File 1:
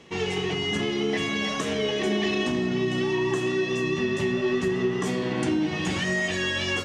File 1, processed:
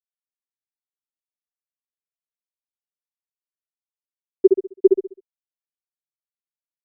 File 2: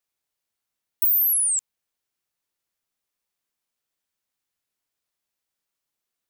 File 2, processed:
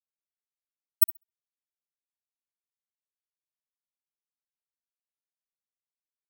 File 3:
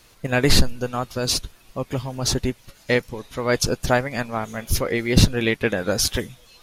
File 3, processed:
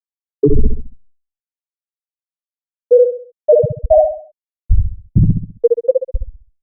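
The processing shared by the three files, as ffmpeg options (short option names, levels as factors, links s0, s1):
-filter_complex "[0:a]afftfilt=real='re*gte(hypot(re,im),1)':imag='im*gte(hypot(re,im),1)':win_size=1024:overlap=0.75,acompressor=threshold=0.0794:ratio=6,asplit=2[s0][s1];[s1]adelay=66,lowpass=f=3500:p=1,volume=0.562,asplit=2[s2][s3];[s3]adelay=66,lowpass=f=3500:p=1,volume=0.38,asplit=2[s4][s5];[s5]adelay=66,lowpass=f=3500:p=1,volume=0.38,asplit=2[s6][s7];[s7]adelay=66,lowpass=f=3500:p=1,volume=0.38,asplit=2[s8][s9];[s9]adelay=66,lowpass=f=3500:p=1,volume=0.38[s10];[s0][s2][s4][s6][s8][s10]amix=inputs=6:normalize=0,alimiter=level_in=13.3:limit=0.891:release=50:level=0:latency=1,volume=0.841" -ar 48000 -c:a libopus -b:a 96k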